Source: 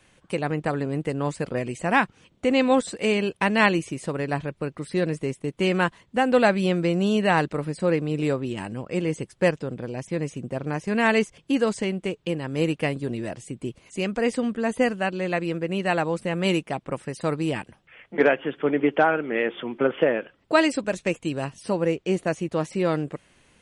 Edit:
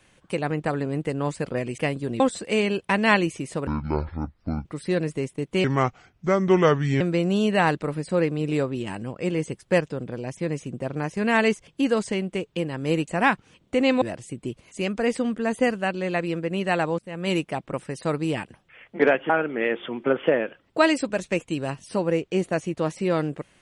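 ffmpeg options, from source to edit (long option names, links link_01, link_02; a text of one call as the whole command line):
ffmpeg -i in.wav -filter_complex "[0:a]asplit=11[link_01][link_02][link_03][link_04][link_05][link_06][link_07][link_08][link_09][link_10][link_11];[link_01]atrim=end=1.782[link_12];[link_02]atrim=start=12.778:end=13.202[link_13];[link_03]atrim=start=2.718:end=4.194[link_14];[link_04]atrim=start=4.19:end=4.71,asetpts=PTS-STARTPTS,asetrate=23373,aresample=44100[link_15];[link_05]atrim=start=4.706:end=5.704[link_16];[link_06]atrim=start=5.7:end=6.71,asetpts=PTS-STARTPTS,asetrate=32634,aresample=44100[link_17];[link_07]atrim=start=6.706:end=12.782[link_18];[link_08]atrim=start=1.778:end=2.722[link_19];[link_09]atrim=start=13.198:end=16.17,asetpts=PTS-STARTPTS,afade=type=out:start_time=2.968:duration=0.004:curve=hsin:silence=0.0891251[link_20];[link_10]atrim=start=16.17:end=18.482,asetpts=PTS-STARTPTS,afade=type=in:duration=0.42:silence=0.0891251[link_21];[link_11]atrim=start=19.038[link_22];[link_12][link_13]acrossfade=duration=0.004:curve1=hsin:curve2=hsin[link_23];[link_23][link_14]acrossfade=duration=0.004:curve1=hsin:curve2=hsin[link_24];[link_24][link_15]acrossfade=duration=0.004:curve1=hsin:curve2=hsin[link_25];[link_25][link_16]acrossfade=duration=0.004:curve1=hsin:curve2=hsin[link_26];[link_26][link_17]acrossfade=duration=0.004:curve1=hsin:curve2=hsin[link_27];[link_27][link_18]acrossfade=duration=0.004:curve1=hsin:curve2=hsin[link_28];[link_28][link_19]acrossfade=duration=0.004:curve1=hsin:curve2=hsin[link_29];[link_20][link_21]concat=n=2:v=0:a=1[link_30];[link_29][link_30]acrossfade=duration=0.004:curve1=hsin:curve2=hsin[link_31];[link_31][link_22]acrossfade=duration=0.004:curve1=hsin:curve2=hsin" out.wav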